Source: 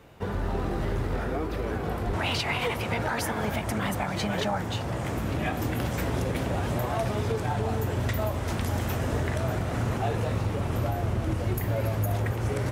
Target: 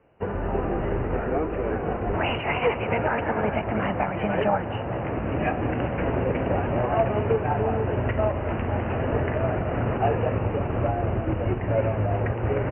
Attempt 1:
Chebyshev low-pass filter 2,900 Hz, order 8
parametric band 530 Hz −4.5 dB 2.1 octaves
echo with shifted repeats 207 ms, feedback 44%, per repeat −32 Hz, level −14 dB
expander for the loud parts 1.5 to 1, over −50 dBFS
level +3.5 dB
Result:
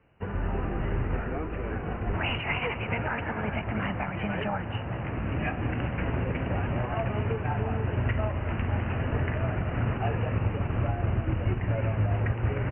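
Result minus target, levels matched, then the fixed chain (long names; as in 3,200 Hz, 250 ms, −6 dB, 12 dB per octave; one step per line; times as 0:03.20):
500 Hz band −5.5 dB
Chebyshev low-pass filter 2,900 Hz, order 8
parametric band 530 Hz +5.5 dB 2.1 octaves
echo with shifted repeats 207 ms, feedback 44%, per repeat −32 Hz, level −14 dB
expander for the loud parts 1.5 to 1, over −50 dBFS
level +3.5 dB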